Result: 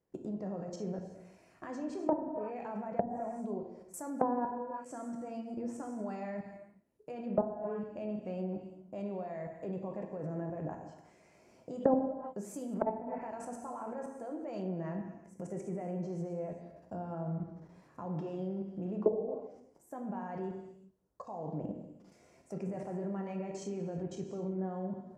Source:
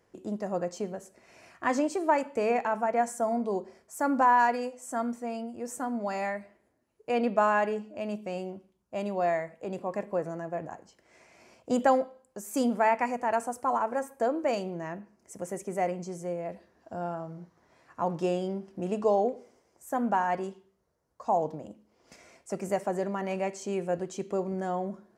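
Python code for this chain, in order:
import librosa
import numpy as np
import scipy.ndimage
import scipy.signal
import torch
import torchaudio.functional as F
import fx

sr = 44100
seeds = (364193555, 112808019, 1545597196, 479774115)

y = fx.level_steps(x, sr, step_db=22)
y = fx.tilt_shelf(y, sr, db=6.0, hz=910.0)
y = fx.rev_gated(y, sr, seeds[0], gate_ms=410, shape='falling', drr_db=3.0)
y = fx.env_lowpass_down(y, sr, base_hz=460.0, full_db=-27.0)
y = fx.high_shelf(y, sr, hz=7500.0, db=10.0)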